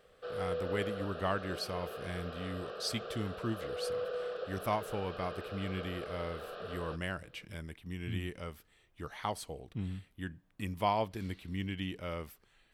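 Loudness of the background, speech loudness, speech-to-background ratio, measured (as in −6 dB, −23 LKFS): −42.0 LKFS, −39.0 LKFS, 3.0 dB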